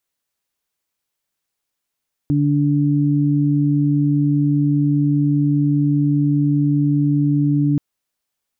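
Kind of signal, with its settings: steady additive tone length 5.48 s, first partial 145 Hz, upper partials -0.5 dB, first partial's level -16 dB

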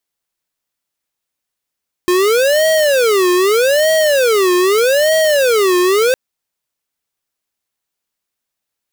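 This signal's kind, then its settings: siren wail 357–637 Hz 0.81 per s square -12 dBFS 4.06 s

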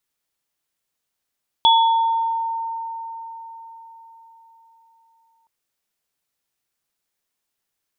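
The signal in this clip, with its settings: sine partials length 3.82 s, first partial 911 Hz, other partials 3.39 kHz, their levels -1.5 dB, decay 4.61 s, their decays 0.86 s, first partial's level -11 dB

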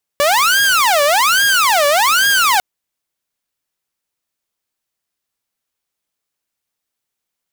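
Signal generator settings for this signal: siren wail 573–1630 Hz 1.2 per s saw -8 dBFS 2.40 s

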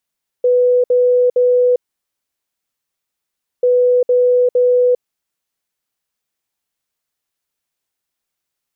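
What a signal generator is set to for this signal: beep pattern sine 495 Hz, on 0.40 s, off 0.06 s, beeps 3, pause 1.87 s, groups 2, -9 dBFS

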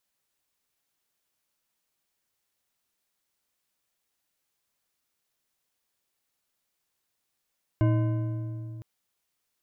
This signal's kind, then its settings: metal hit bar, length 1.01 s, lowest mode 115 Hz, modes 7, decay 3.20 s, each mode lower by 6 dB, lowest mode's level -19 dB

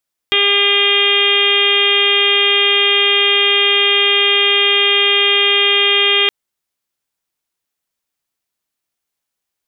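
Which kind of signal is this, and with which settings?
steady additive tone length 5.97 s, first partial 403 Hz, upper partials -10.5/-5/-8/-0.5/1.5/0.5/6/-3 dB, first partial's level -19.5 dB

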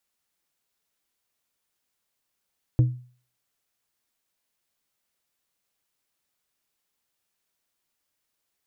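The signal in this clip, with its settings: glass hit plate, lowest mode 124 Hz, decay 0.43 s, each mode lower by 11.5 dB, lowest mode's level -12 dB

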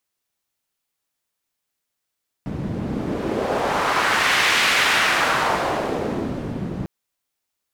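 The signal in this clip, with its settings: wind-like swept noise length 4.40 s, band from 170 Hz, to 2.2 kHz, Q 1.2, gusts 1, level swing 9.5 dB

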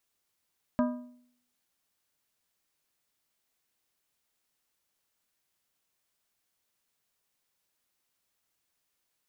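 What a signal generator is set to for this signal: metal hit plate, lowest mode 246 Hz, decay 0.65 s, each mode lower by 5 dB, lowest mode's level -21.5 dB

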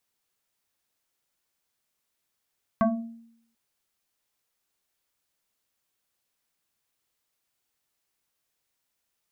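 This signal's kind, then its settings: FM tone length 0.74 s, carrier 230 Hz, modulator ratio 1.93, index 2.2, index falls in 0.60 s exponential, decay 0.74 s, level -16 dB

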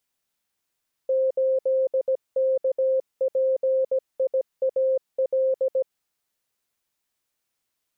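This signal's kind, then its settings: Morse "8KPIAL" 17 wpm 526 Hz -18.5 dBFS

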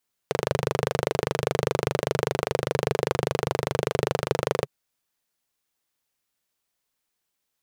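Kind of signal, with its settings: single-cylinder engine model, steady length 4.36 s, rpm 3000, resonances 140/440 Hz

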